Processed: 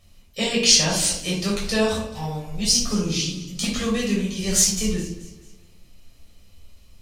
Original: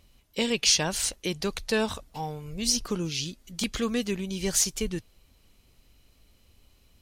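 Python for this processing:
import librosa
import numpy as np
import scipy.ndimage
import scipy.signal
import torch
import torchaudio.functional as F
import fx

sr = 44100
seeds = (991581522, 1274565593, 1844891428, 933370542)

y = fx.peak_eq(x, sr, hz=6700.0, db=5.0, octaves=2.0)
y = fx.echo_feedback(y, sr, ms=216, feedback_pct=43, wet_db=-17.5)
y = fx.room_shoebox(y, sr, seeds[0], volume_m3=620.0, walls='furnished', distance_m=6.2)
y = F.gain(torch.from_numpy(y), -4.5).numpy()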